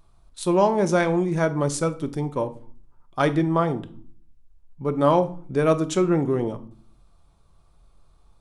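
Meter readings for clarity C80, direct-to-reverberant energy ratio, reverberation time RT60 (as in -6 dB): 20.5 dB, 9.5 dB, 0.50 s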